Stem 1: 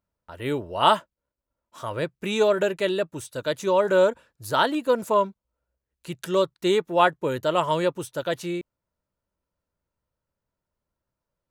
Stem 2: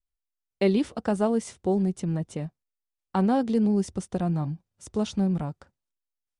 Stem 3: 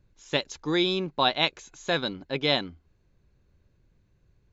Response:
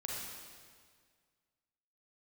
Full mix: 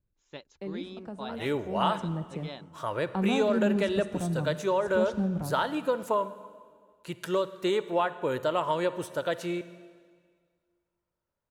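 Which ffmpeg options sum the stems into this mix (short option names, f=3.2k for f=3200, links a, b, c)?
-filter_complex "[0:a]lowshelf=f=390:g=-8,acompressor=threshold=-25dB:ratio=5,adelay=1000,volume=1dB,asplit=2[a][b];[b]volume=-12dB[c];[1:a]acrusher=bits=10:mix=0:aa=0.000001,acrossover=split=290[d][e];[e]acompressor=threshold=-28dB:ratio=1.5[f];[d][f]amix=inputs=2:normalize=0,volume=-6dB,afade=t=in:st=1.63:d=0.42:silence=0.316228,asplit=2[g][h];[h]volume=-10dB[i];[2:a]volume=-16dB[j];[3:a]atrim=start_sample=2205[k];[c][i]amix=inputs=2:normalize=0[l];[l][k]afir=irnorm=-1:irlink=0[m];[a][g][j][m]amix=inputs=4:normalize=0,highshelf=f=2.5k:g=-8"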